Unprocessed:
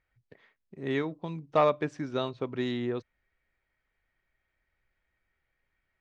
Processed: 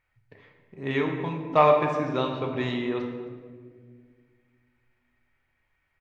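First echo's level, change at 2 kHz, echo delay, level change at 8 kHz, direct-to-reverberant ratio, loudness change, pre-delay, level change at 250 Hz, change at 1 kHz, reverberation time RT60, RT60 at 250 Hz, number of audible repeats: −19.0 dB, +6.5 dB, 263 ms, can't be measured, 1.5 dB, +5.5 dB, 7 ms, +4.0 dB, +7.5 dB, 1.8 s, 2.6 s, 1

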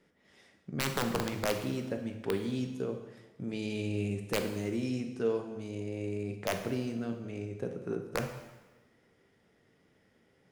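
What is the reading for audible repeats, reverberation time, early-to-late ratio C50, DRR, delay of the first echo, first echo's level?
no echo audible, 1.2 s, 7.5 dB, 5.0 dB, no echo audible, no echo audible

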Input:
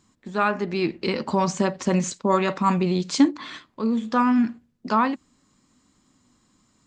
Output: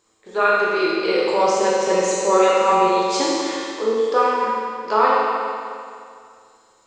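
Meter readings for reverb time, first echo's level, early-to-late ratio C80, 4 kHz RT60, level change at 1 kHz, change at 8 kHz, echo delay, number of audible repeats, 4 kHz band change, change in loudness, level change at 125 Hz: 2.3 s, no echo audible, −1.0 dB, 2.2 s, +7.0 dB, +6.5 dB, no echo audible, no echo audible, +6.5 dB, +4.5 dB, below −10 dB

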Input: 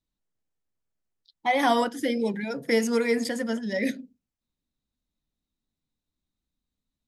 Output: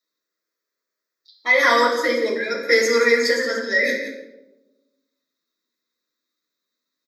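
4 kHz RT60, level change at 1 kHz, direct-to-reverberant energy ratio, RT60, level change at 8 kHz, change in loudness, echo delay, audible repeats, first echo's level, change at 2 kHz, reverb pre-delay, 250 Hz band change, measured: 0.65 s, +4.5 dB, −2.5 dB, 1.0 s, +7.5 dB, +7.5 dB, 177 ms, 1, −11.5 dB, +13.5 dB, 6 ms, −3.0 dB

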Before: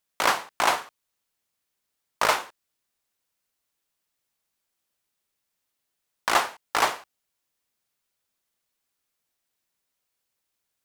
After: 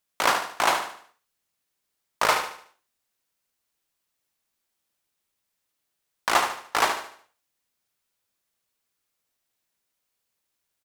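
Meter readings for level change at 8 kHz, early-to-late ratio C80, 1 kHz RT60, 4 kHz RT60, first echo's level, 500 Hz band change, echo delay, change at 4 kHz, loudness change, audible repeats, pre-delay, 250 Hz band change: +0.5 dB, no reverb audible, no reverb audible, no reverb audible, −8.0 dB, +0.5 dB, 74 ms, +0.5 dB, +0.5 dB, 4, no reverb audible, +1.0 dB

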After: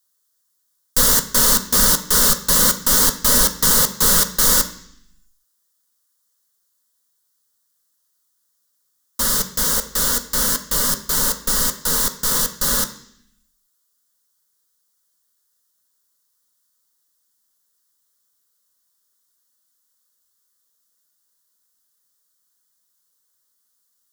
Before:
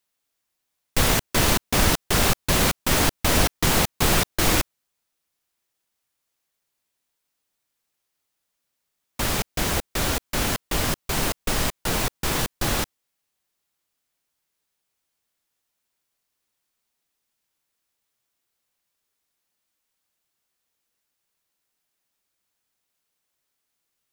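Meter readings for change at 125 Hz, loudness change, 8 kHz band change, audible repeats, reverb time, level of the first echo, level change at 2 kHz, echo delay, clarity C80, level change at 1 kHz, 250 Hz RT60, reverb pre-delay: −5.0 dB, +7.0 dB, +10.0 dB, no echo audible, 0.65 s, no echo audible, −0.5 dB, no echo audible, 15.0 dB, +0.5 dB, 0.95 s, 3 ms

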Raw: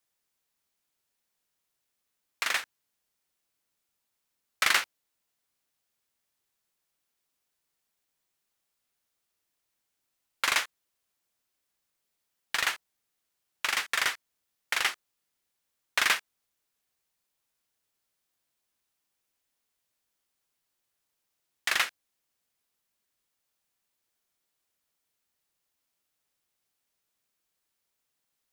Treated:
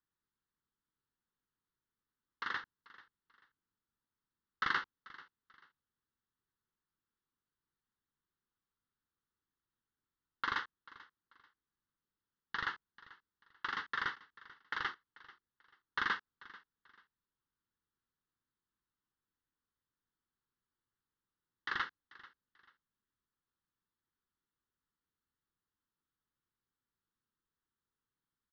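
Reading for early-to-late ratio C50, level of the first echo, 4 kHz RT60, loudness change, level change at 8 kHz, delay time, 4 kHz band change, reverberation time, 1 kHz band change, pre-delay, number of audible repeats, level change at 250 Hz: no reverb audible, −20.0 dB, no reverb audible, −11.0 dB, below −30 dB, 439 ms, −15.0 dB, no reverb audible, −5.0 dB, no reverb audible, 2, −2.5 dB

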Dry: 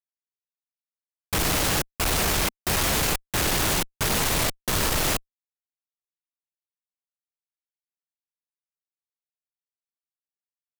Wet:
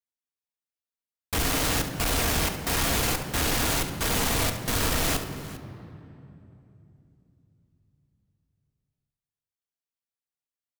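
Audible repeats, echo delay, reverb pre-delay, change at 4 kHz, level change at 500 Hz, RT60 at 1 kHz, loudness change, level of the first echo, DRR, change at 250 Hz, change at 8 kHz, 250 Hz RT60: 2, 70 ms, 3 ms, −2.0 dB, −1.5 dB, 2.6 s, −2.0 dB, −11.0 dB, 5.0 dB, 0.0 dB, −2.5 dB, 4.4 s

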